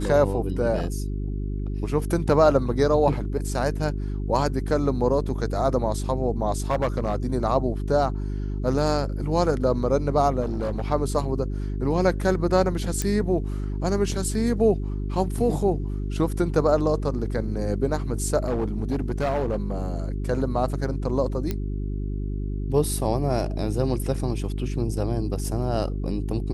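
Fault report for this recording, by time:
mains hum 50 Hz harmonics 8 −28 dBFS
0:06.70–0:07.26: clipping −17.5 dBFS
0:10.41–0:10.86: clipping −22.5 dBFS
0:13.02: click −11 dBFS
0:18.46–0:19.88: clipping −20 dBFS
0:21.51: click −13 dBFS

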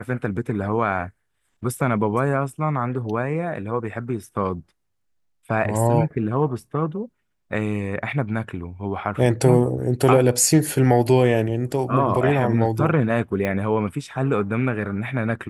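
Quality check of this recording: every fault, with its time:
0:13.45: click −12 dBFS

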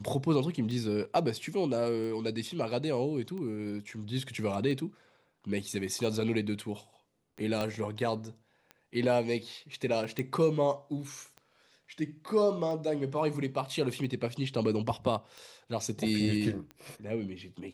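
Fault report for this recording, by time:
scratch tick 45 rpm
0:07.61: click −19 dBFS
0:10.19: click −19 dBFS

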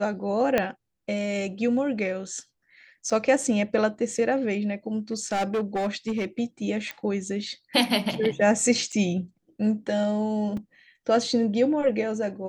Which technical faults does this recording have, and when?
0:00.58: click −9 dBFS
0:03.10–0:03.11: drop-out 5.2 ms
0:05.12–0:06.25: clipping −22 dBFS
0:06.91: click −18 dBFS
0:08.92–0:08.93: drop-out 6.1 ms
0:10.57: drop-out 3.6 ms

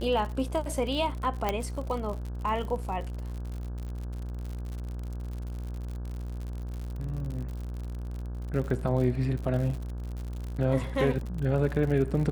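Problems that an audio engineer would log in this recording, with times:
mains buzz 60 Hz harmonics 28 −35 dBFS
surface crackle 78 per second −35 dBFS
0:01.49: click −13 dBFS

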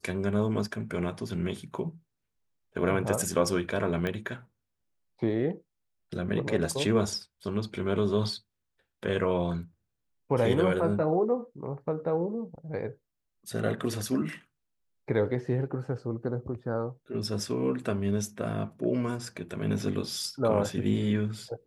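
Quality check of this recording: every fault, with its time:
0:04.07: click −18 dBFS

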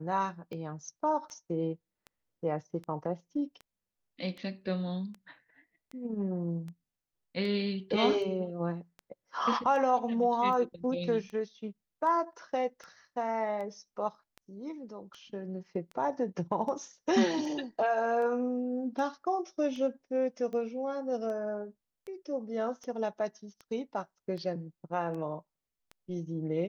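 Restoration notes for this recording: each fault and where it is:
scratch tick 78 rpm −31 dBFS

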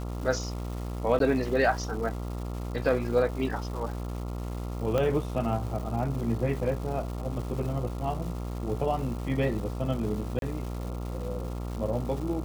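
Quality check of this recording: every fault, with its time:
mains buzz 60 Hz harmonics 23 −34 dBFS
surface crackle 510 per second −38 dBFS
0:01.19–0:01.20: drop-out 12 ms
0:04.98: click −15 dBFS
0:10.39–0:10.42: drop-out 32 ms

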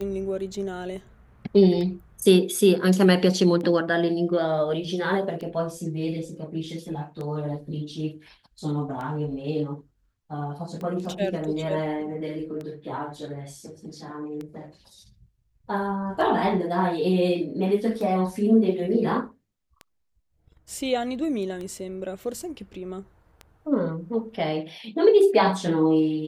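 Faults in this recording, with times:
scratch tick 33 1/3 rpm −23 dBFS

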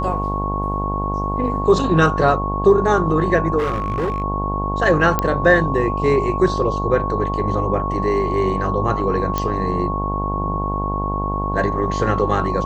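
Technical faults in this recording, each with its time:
mains buzz 50 Hz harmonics 21 −24 dBFS
whistle 1,100 Hz −23 dBFS
0:03.58–0:04.22: clipping −17 dBFS
0:05.19: click −4 dBFS
0:09.38: click −7 dBFS

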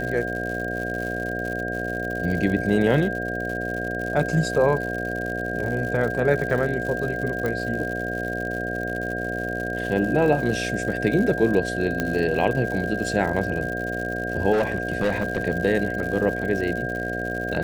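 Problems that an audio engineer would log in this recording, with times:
mains buzz 60 Hz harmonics 12 −30 dBFS
surface crackle 140 per second −30 dBFS
whistle 1,600 Hz −29 dBFS
0:07.46: click
0:12.00: click −10 dBFS
0:14.52–0:15.43: clipping −17 dBFS

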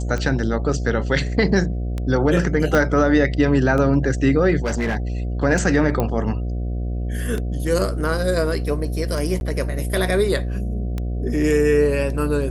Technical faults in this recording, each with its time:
mains buzz 60 Hz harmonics 12 −24 dBFS
scratch tick 33 1/3 rpm −14 dBFS
0:02.75: click −7 dBFS
0:04.64–0:04.97: clipping −17.5 dBFS
0:06.00: click −9 dBFS
0:09.40–0:09.41: drop-out 11 ms

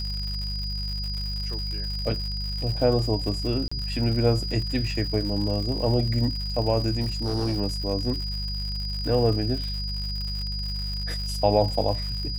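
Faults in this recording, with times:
surface crackle 140 per second −32 dBFS
mains hum 50 Hz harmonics 4 −31 dBFS
whistle 4,900 Hz −32 dBFS
0:03.68–0:03.71: drop-out 35 ms
0:07.02–0:07.57: clipping −21.5 dBFS

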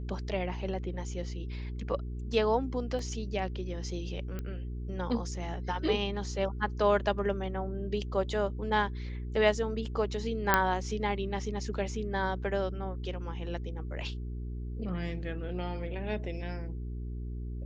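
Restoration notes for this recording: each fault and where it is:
mains hum 60 Hz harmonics 7 −37 dBFS
0:02.99: drop-out 2.5 ms
0:04.39: click −24 dBFS
0:10.54: click −7 dBFS

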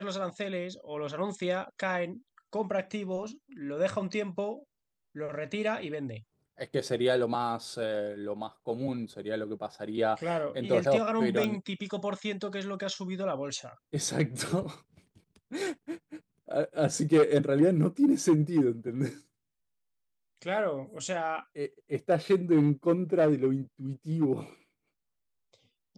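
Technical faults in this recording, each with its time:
0:11.44: click

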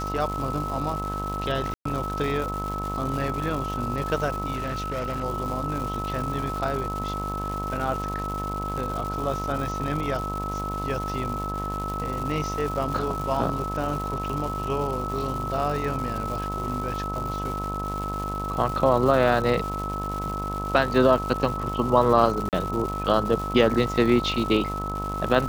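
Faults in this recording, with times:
mains buzz 50 Hz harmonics 24 −32 dBFS
surface crackle 360 per second −31 dBFS
whistle 1,300 Hz −30 dBFS
0:01.74–0:01.85: drop-out 114 ms
0:04.54–0:05.24: clipping −25 dBFS
0:22.49–0:22.53: drop-out 38 ms

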